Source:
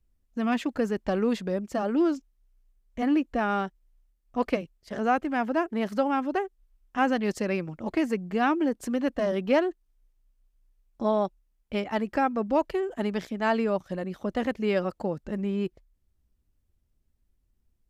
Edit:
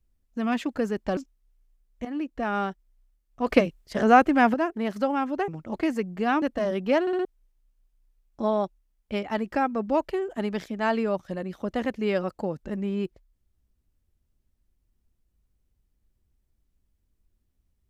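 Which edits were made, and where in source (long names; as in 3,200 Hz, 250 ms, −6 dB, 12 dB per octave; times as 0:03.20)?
0:01.17–0:02.13: remove
0:03.01–0:03.54: fade in, from −12 dB
0:04.43–0:05.50: clip gain +8 dB
0:06.44–0:07.62: remove
0:08.56–0:09.03: remove
0:09.62: stutter in place 0.06 s, 4 plays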